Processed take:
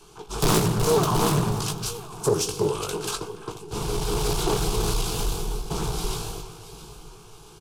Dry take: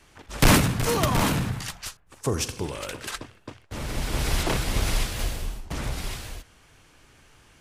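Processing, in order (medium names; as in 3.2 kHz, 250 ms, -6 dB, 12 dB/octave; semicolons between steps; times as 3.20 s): in parallel at +2 dB: peak limiter -20.5 dBFS, peak gain reduction 10.5 dB; on the sum: saturation -15 dBFS, distortion -14 dB; static phaser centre 380 Hz, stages 8; doubling 19 ms -7 dB; small resonant body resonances 430/1900 Hz, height 8 dB, ringing for 35 ms; on a send: echo whose repeats swap between lows and highs 339 ms, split 2.1 kHz, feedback 63%, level -10 dB; on the sum: loudspeaker Doppler distortion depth 0.42 ms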